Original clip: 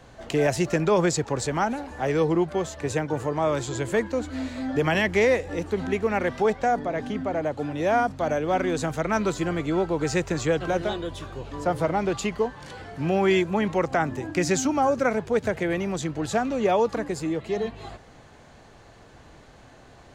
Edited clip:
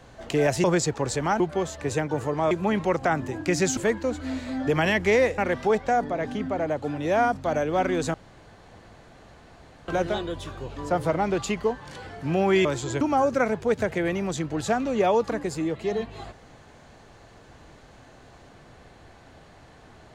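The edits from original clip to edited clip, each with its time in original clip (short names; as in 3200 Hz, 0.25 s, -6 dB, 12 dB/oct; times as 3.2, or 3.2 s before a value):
0.64–0.95 cut
1.71–2.39 cut
3.5–3.86 swap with 13.4–14.66
5.47–6.13 cut
8.89–10.63 room tone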